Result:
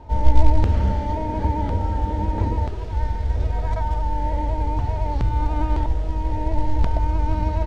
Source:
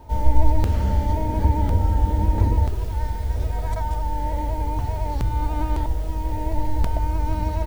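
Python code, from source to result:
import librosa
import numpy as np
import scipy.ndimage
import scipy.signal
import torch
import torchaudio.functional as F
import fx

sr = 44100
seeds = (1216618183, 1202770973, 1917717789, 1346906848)

y = fx.low_shelf(x, sr, hz=160.0, db=-7.0, at=(0.92, 2.92))
y = fx.quant_float(y, sr, bits=4)
y = fx.air_absorb(y, sr, metres=120.0)
y = y * librosa.db_to_amplitude(2.0)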